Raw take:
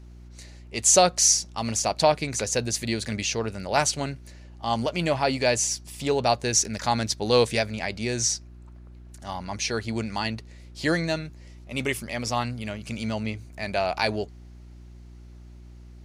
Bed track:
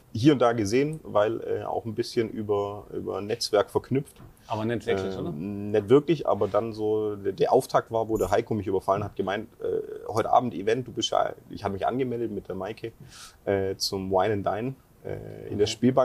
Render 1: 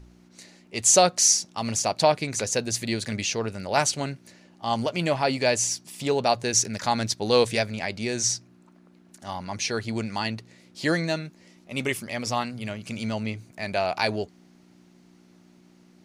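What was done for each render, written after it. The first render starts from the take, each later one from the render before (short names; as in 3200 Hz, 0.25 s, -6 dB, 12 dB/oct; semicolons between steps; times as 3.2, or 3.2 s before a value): de-hum 60 Hz, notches 2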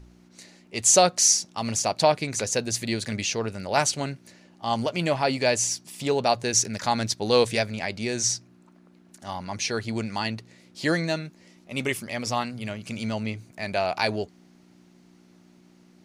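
nothing audible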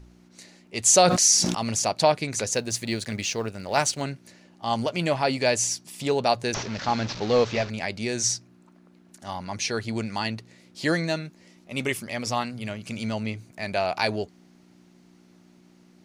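0.87–1.89 sustainer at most 44 dB/s; 2.54–4.02 G.711 law mismatch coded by A; 6.54–7.7 delta modulation 32 kbps, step -30.5 dBFS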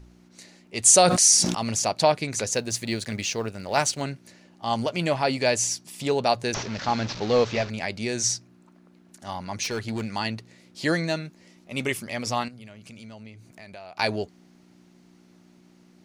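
0.84–1.43 bell 9000 Hz +10 dB 0.27 oct; 9.63–10.15 overloaded stage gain 24.5 dB; 12.48–13.99 compressor 3:1, threshold -45 dBFS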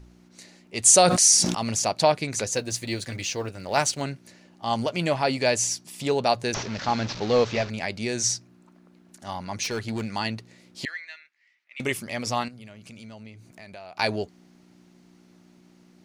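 2.45–3.65 notch comb 210 Hz; 10.85–11.8 ladder band-pass 2200 Hz, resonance 60%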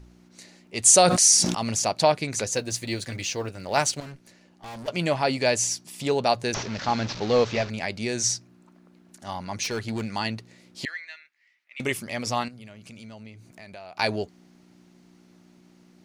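4–4.88 tube stage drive 37 dB, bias 0.65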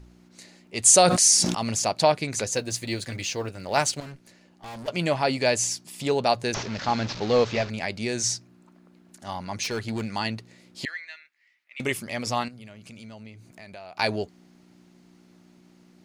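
notch 5800 Hz, Q 28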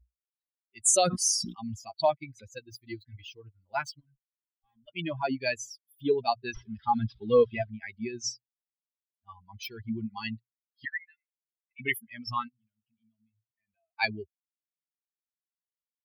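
per-bin expansion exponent 3; vocal rider within 5 dB 2 s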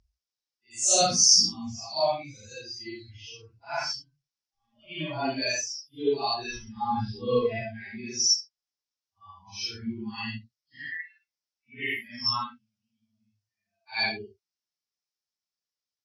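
phase scrambler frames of 0.2 s; synth low-pass 5400 Hz, resonance Q 4.9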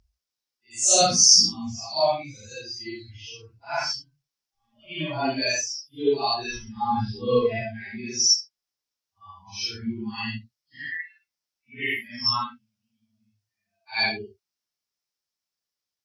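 gain +3.5 dB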